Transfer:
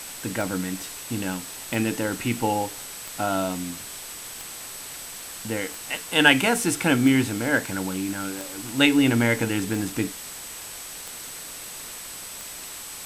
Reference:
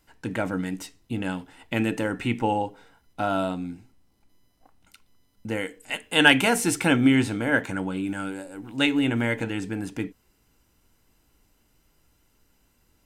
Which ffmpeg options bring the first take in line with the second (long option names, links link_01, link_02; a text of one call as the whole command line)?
ffmpeg -i in.wav -af "adeclick=threshold=4,bandreject=frequency=8000:width=30,afwtdn=0.014,asetnsamples=nb_out_samples=441:pad=0,asendcmd='8.64 volume volume -4dB',volume=0dB" out.wav